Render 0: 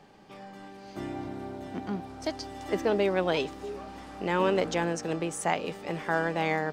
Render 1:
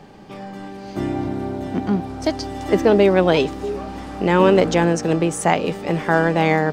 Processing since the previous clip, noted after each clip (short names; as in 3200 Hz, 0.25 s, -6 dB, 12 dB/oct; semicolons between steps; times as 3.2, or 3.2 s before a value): low shelf 440 Hz +6.5 dB; gain +8.5 dB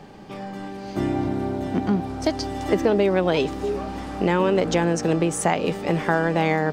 compressor 4:1, threshold -16 dBFS, peak gain reduction 7 dB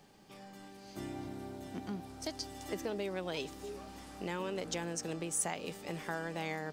pre-emphasis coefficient 0.8; gain -5 dB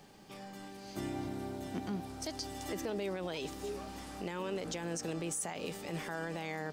limiter -32 dBFS, peak gain reduction 10 dB; gain +4 dB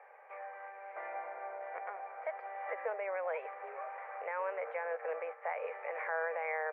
Chebyshev band-pass 480–2300 Hz, order 5; gain +6 dB